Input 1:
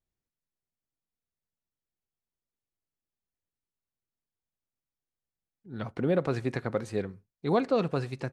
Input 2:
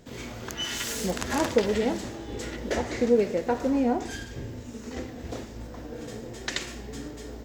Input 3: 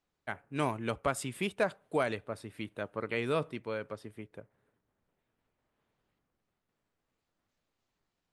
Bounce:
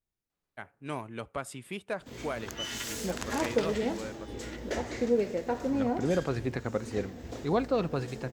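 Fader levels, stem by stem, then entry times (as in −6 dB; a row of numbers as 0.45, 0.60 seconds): −2.0, −5.0, −5.0 decibels; 0.00, 2.00, 0.30 seconds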